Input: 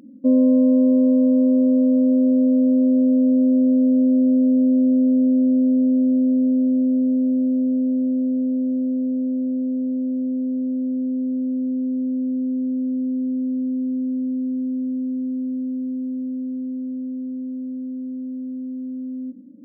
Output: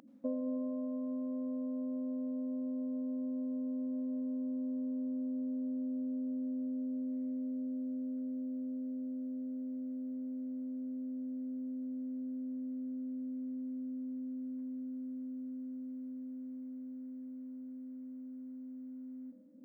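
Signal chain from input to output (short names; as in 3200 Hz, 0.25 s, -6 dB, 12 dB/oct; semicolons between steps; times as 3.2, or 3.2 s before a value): resonant low shelf 540 Hz -10.5 dB, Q 1.5; compressor, threshold -29 dBFS, peak gain reduction 6.5 dB; on a send: reverb RT60 3.2 s, pre-delay 73 ms, DRR 7 dB; on the sum: gain -3.5 dB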